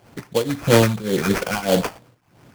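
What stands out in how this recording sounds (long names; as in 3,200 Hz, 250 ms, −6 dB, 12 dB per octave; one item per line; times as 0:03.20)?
tremolo triangle 1.7 Hz, depth 90%
a quantiser's noise floor 12 bits, dither none
phaser sweep stages 6, 3 Hz, lowest notch 420–4,400 Hz
aliases and images of a low sample rate 3,800 Hz, jitter 20%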